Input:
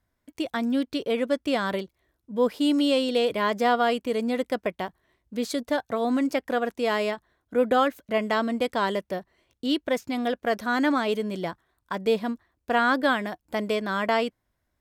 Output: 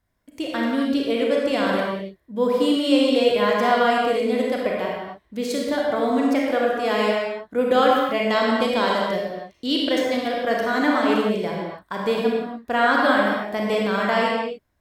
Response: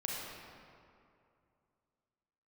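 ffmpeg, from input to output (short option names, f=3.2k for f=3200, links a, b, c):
-filter_complex "[0:a]asettb=1/sr,asplit=3[a][b][c];[a]atrim=end=7.614[d];[b]atrim=start=7.61:end=10.21,asetpts=PTS-STARTPTS,afade=t=in:d=0.004:c=qsin,afade=t=out:st=2.596:d=0.004:c=qsin,equalizer=f=4.3k:t=o:w=1.2:g=5.5[e];[c]atrim=start=10.206[f];[d][e]acrossfade=d=0.004:c1=hsin:c2=qsin[g];[g][f]acrossfade=d=0.004:c1=qsin:c2=hsin[h];[1:a]atrim=start_sample=2205,afade=t=out:st=0.35:d=0.01,atrim=end_sample=15876[i];[h][i]afir=irnorm=-1:irlink=0,volume=2.5dB"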